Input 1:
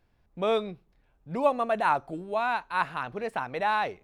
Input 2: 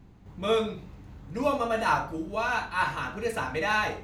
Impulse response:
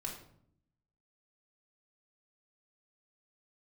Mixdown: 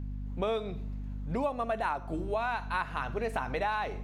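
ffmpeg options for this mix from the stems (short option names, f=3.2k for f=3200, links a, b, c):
-filter_complex "[0:a]aeval=exprs='val(0)+0.0126*(sin(2*PI*50*n/s)+sin(2*PI*2*50*n/s)/2+sin(2*PI*3*50*n/s)/3+sin(2*PI*4*50*n/s)/4+sin(2*PI*5*50*n/s)/5)':c=same,volume=1.5dB,asplit=3[a][b][c];[b]volume=-16dB[d];[1:a]volume=-7.5dB[e];[c]apad=whole_len=178127[f];[e][f]sidechaincompress=threshold=-26dB:ratio=8:attack=11:release=334[g];[2:a]atrim=start_sample=2205[h];[d][h]afir=irnorm=-1:irlink=0[i];[a][g][i]amix=inputs=3:normalize=0,acompressor=threshold=-28dB:ratio=6"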